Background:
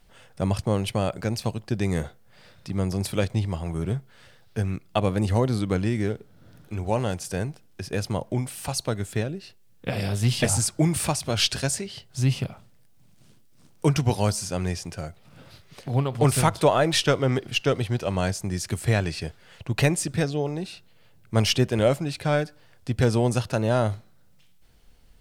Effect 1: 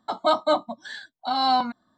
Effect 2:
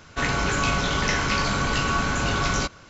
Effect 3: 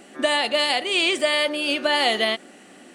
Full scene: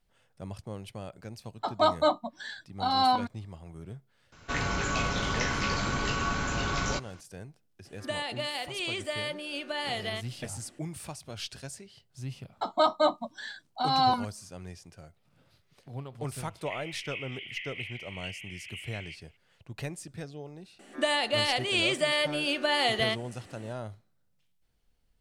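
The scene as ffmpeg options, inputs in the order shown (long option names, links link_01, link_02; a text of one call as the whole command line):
ffmpeg -i bed.wav -i cue0.wav -i cue1.wav -i cue2.wav -filter_complex "[1:a]asplit=2[link_01][link_02];[2:a]asplit=2[link_03][link_04];[3:a]asplit=2[link_05][link_06];[0:a]volume=-16dB[link_07];[link_04]asuperpass=centerf=2500:order=12:qfactor=2[link_08];[link_01]atrim=end=1.97,asetpts=PTS-STARTPTS,volume=-3dB,afade=type=in:duration=0.004:curve=hsin,afade=type=out:start_time=1.966:duration=0.004:curve=hsin,adelay=1550[link_09];[link_03]atrim=end=2.89,asetpts=PTS-STARTPTS,volume=-6.5dB,afade=type=in:duration=0.004:curve=hsin,afade=type=out:start_time=2.886:duration=0.004:curve=hsin,adelay=4320[link_10];[link_05]atrim=end=2.94,asetpts=PTS-STARTPTS,volume=-13dB,afade=type=in:duration=0.004:curve=hsin,afade=type=out:start_time=2.936:duration=0.004:curve=hsin,adelay=7850[link_11];[link_02]atrim=end=1.97,asetpts=PTS-STARTPTS,volume=-3dB,afade=type=in:duration=0.004:curve=hsin,afade=type=out:start_time=1.966:duration=0.004:curve=hsin,adelay=12530[link_12];[link_08]atrim=end=2.89,asetpts=PTS-STARTPTS,volume=-8.5dB,afade=type=in:duration=0.004:curve=hsin,afade=type=out:start_time=2.886:duration=0.004:curve=hsin,adelay=16480[link_13];[link_06]atrim=end=2.94,asetpts=PTS-STARTPTS,volume=-6dB,afade=type=in:duration=0.004:curve=hsin,afade=type=out:start_time=2.936:duration=0.004:curve=hsin,adelay=20790[link_14];[link_07][link_09][link_10][link_11][link_12][link_13][link_14]amix=inputs=7:normalize=0" out.wav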